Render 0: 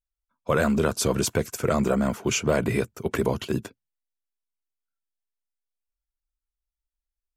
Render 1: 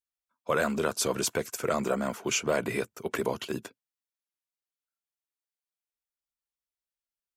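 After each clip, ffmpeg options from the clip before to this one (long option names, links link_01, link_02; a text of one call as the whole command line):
ffmpeg -i in.wav -af "highpass=frequency=410:poles=1,volume=-2dB" out.wav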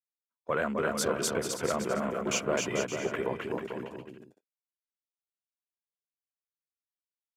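ffmpeg -i in.wav -filter_complex "[0:a]afwtdn=0.00891,asplit=2[link_01][link_02];[link_02]aecho=0:1:260|442|569.4|658.6|721:0.631|0.398|0.251|0.158|0.1[link_03];[link_01][link_03]amix=inputs=2:normalize=0,volume=-3dB" out.wav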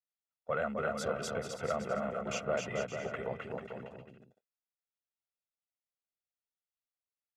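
ffmpeg -i in.wav -af "aemphasis=mode=reproduction:type=50fm,aecho=1:1:1.5:0.69,volume=-6dB" out.wav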